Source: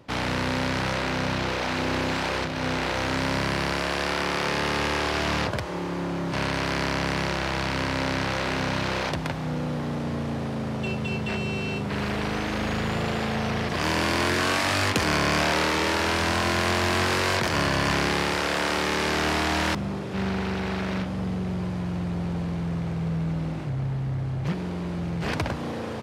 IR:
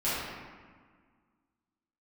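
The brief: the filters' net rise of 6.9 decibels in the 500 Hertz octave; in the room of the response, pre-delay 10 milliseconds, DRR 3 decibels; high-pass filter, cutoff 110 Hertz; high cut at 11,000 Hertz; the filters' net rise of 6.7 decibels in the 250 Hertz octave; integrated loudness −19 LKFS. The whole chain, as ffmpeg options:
-filter_complex "[0:a]highpass=110,lowpass=11000,equalizer=frequency=250:width_type=o:gain=7.5,equalizer=frequency=500:width_type=o:gain=6.5,asplit=2[link_01][link_02];[1:a]atrim=start_sample=2205,adelay=10[link_03];[link_02][link_03]afir=irnorm=-1:irlink=0,volume=-13.5dB[link_04];[link_01][link_04]amix=inputs=2:normalize=0,volume=1.5dB"

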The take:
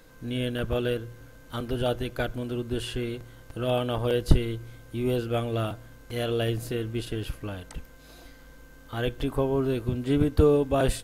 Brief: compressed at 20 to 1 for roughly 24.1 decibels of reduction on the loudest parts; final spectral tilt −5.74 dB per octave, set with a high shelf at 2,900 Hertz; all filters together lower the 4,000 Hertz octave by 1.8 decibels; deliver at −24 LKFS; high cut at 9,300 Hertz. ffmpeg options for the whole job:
ffmpeg -i in.wav -af "lowpass=9300,highshelf=frequency=2900:gain=8,equalizer=frequency=4000:width_type=o:gain=-9,acompressor=threshold=-35dB:ratio=20,volume=17dB" out.wav

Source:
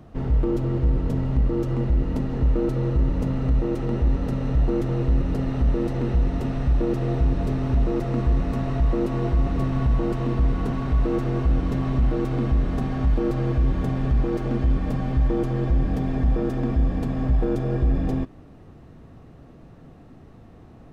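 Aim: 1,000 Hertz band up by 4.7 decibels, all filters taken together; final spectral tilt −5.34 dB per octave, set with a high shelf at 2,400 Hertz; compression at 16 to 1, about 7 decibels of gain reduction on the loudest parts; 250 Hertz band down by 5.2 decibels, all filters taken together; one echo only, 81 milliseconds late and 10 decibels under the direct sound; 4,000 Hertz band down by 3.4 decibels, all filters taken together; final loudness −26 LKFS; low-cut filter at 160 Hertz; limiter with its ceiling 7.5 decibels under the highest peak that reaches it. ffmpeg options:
ffmpeg -i in.wav -af "highpass=160,equalizer=frequency=250:width_type=o:gain=-6.5,equalizer=frequency=1000:width_type=o:gain=6.5,highshelf=frequency=2400:gain=4,equalizer=frequency=4000:width_type=o:gain=-9,acompressor=threshold=-29dB:ratio=16,alimiter=level_in=3dB:limit=-24dB:level=0:latency=1,volume=-3dB,aecho=1:1:81:0.316,volume=10dB" out.wav

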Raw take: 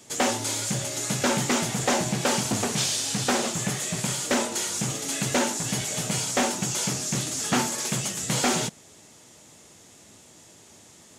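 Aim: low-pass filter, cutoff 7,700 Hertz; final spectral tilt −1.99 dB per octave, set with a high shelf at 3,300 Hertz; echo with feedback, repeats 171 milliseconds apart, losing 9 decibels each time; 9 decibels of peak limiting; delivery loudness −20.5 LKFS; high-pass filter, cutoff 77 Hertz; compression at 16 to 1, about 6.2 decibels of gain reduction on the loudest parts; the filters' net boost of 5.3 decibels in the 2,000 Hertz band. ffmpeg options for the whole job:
ffmpeg -i in.wav -af "highpass=77,lowpass=7700,equalizer=frequency=2000:width_type=o:gain=5.5,highshelf=frequency=3300:gain=3.5,acompressor=threshold=-23dB:ratio=16,alimiter=limit=-20dB:level=0:latency=1,aecho=1:1:171|342|513|684:0.355|0.124|0.0435|0.0152,volume=7dB" out.wav

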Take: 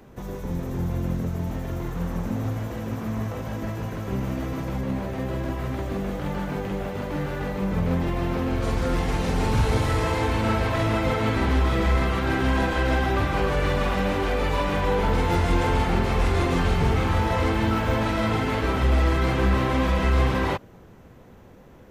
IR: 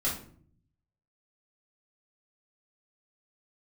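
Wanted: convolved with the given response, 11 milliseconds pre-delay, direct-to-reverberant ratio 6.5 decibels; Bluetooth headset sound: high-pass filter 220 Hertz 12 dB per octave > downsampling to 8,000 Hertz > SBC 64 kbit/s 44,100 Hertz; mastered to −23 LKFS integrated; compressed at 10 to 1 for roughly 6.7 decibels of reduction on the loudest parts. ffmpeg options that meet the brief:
-filter_complex "[0:a]acompressor=threshold=-23dB:ratio=10,asplit=2[link_01][link_02];[1:a]atrim=start_sample=2205,adelay=11[link_03];[link_02][link_03]afir=irnorm=-1:irlink=0,volume=-13dB[link_04];[link_01][link_04]amix=inputs=2:normalize=0,highpass=220,aresample=8000,aresample=44100,volume=7dB" -ar 44100 -c:a sbc -b:a 64k

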